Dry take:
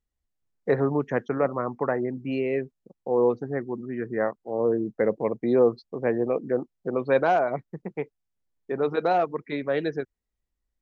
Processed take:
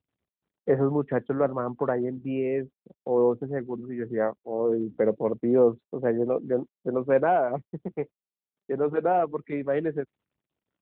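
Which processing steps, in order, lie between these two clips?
treble shelf 2.1 kHz -10.5 dB; 4.35–5.14 s: hum notches 60/120/180/240/300 Hz; trim +1 dB; AMR-NB 12.2 kbps 8 kHz

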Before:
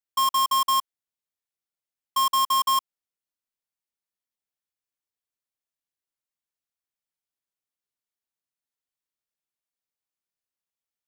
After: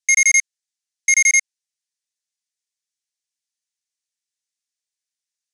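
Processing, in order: elliptic band-pass 850–4900 Hz, stop band 40 dB; peaking EQ 3.1 kHz +10.5 dB 1.1 oct; speed mistake 7.5 ips tape played at 15 ips; trim +5.5 dB

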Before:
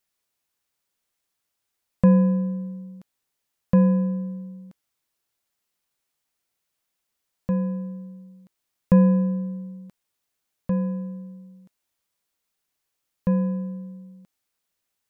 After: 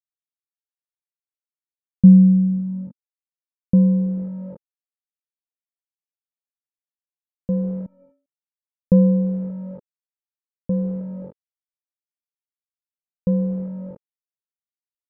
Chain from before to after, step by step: word length cut 6-bit, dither none; low-pass sweep 210 Hz -> 420 Hz, 2.43–4.56 s; 7.86–8.26 s: inharmonic resonator 270 Hz, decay 0.44 s, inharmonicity 0.03

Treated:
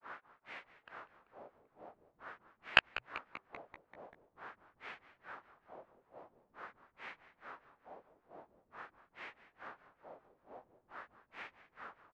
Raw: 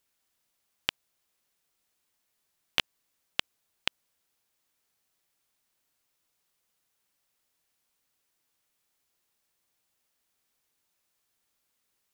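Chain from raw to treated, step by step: self-modulated delay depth 0.23 ms; formant shift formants -5 st; overdrive pedal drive 35 dB, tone 1.2 kHz, clips at -8 dBFS; granulator 221 ms, grains 2.3 per s, spray 26 ms, pitch spread up and down by 0 st; LFO low-pass sine 0.46 Hz 590–2200 Hz; frequency-shifting echo 194 ms, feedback 65%, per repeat -130 Hz, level -15.5 dB; trim +12.5 dB

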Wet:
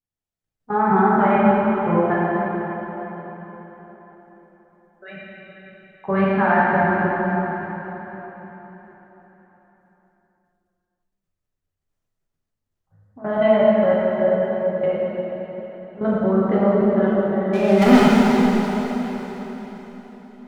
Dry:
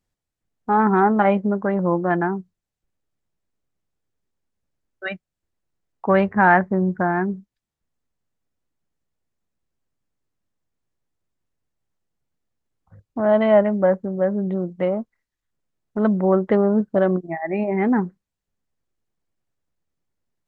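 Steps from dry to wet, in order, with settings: level held to a coarse grid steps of 19 dB; 17.53–18.06 s: waveshaping leveller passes 5; plate-style reverb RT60 4.3 s, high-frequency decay 0.9×, DRR -8.5 dB; trim -3.5 dB

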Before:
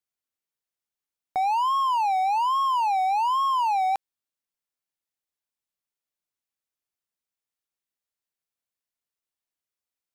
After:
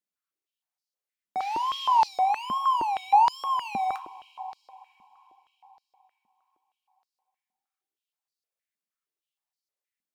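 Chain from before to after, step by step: 1.39–2.07 s: band noise 1.8–5.8 kHz -46 dBFS; two-slope reverb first 0.24 s, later 4.6 s, from -20 dB, DRR 7 dB; step-sequenced high-pass 6.4 Hz 220–4600 Hz; trim -5.5 dB

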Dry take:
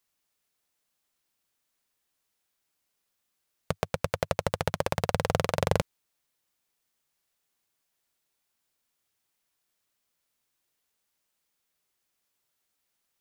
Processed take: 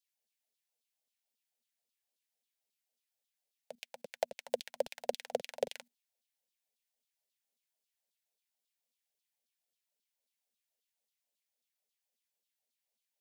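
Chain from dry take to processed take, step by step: peaking EQ 240 Hz +13 dB 0.23 oct; LFO high-pass saw down 3.7 Hz 290–4100 Hz; peak limiter -15 dBFS, peak gain reduction 8.5 dB; level held to a coarse grid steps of 15 dB; static phaser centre 320 Hz, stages 6; trim +1.5 dB

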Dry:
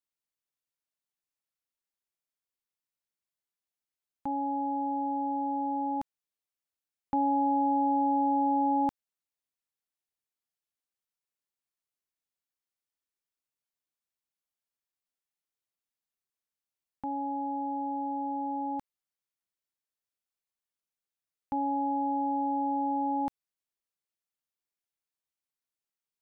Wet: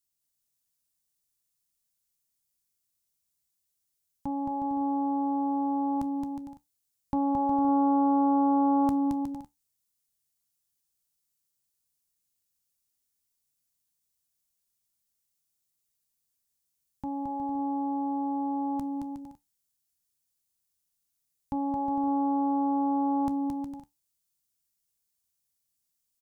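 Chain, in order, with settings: tone controls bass +13 dB, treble +15 dB; feedback comb 72 Hz, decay 0.18 s, harmonics all, mix 50%; bouncing-ball echo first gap 220 ms, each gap 0.65×, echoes 5; loudspeaker Doppler distortion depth 0.16 ms

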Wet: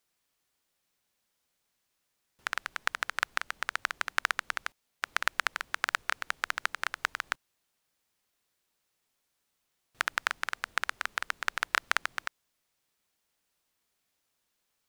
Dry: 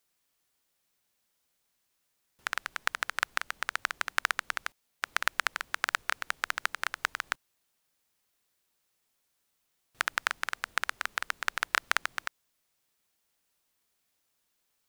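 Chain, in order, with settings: treble shelf 8.6 kHz -4.5 dB

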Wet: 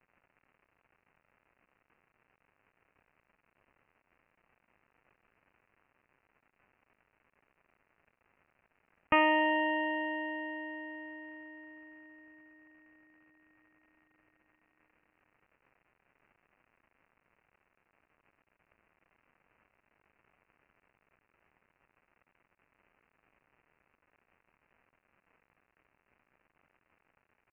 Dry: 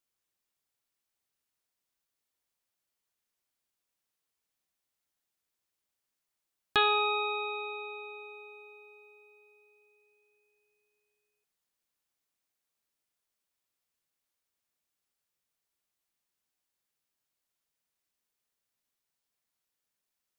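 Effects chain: crackle 340 per s -52 dBFS; resampled via 8 kHz; speed mistake 45 rpm record played at 33 rpm

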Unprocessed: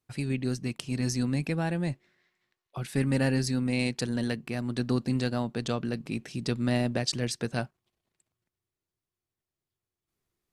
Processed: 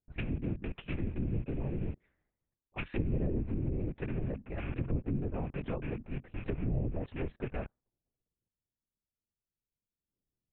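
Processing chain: rattle on loud lows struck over -34 dBFS, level -20 dBFS; LPC vocoder at 8 kHz whisper; treble shelf 2.1 kHz +10 dB, from 3.27 s -4 dB; level-controlled noise filter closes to 460 Hz, open at -22 dBFS; dynamic bell 130 Hz, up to +5 dB, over -41 dBFS, Q 4.7; low-pass that closes with the level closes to 450 Hz, closed at -22.5 dBFS; trim -5.5 dB

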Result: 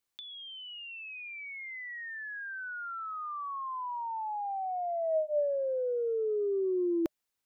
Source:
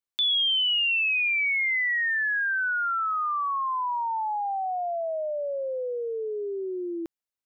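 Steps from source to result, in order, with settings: band-stop 610 Hz, Q 12; compressor with a negative ratio -33 dBFS, ratio -0.5

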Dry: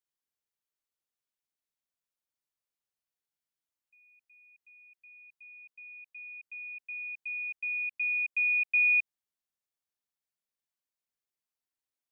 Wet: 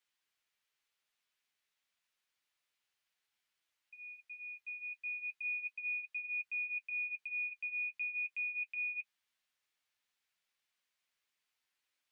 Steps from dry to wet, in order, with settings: peaking EQ 2.4 kHz +13.5 dB 2.7 oct; peak limiter -34.5 dBFS, peak gain reduction 27.5 dB; flange 0.32 Hz, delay 9.1 ms, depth 3.1 ms, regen -28%; trim +3 dB

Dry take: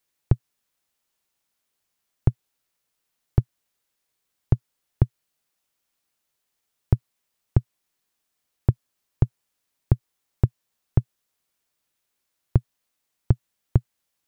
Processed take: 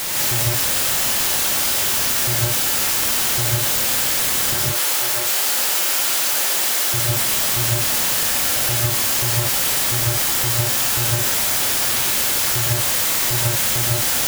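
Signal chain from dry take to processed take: one-bit comparator; 4.54–6.94 s: high-pass 350 Hz 12 dB/octave; gated-style reverb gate 200 ms rising, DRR -4.5 dB; trim +4 dB

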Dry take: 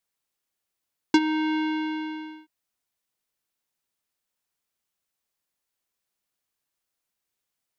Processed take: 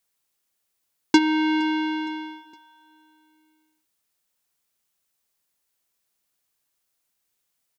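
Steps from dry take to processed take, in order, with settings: treble shelf 5.3 kHz +5 dB; on a send: feedback delay 464 ms, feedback 48%, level -22.5 dB; on the sum: trim +3.5 dB

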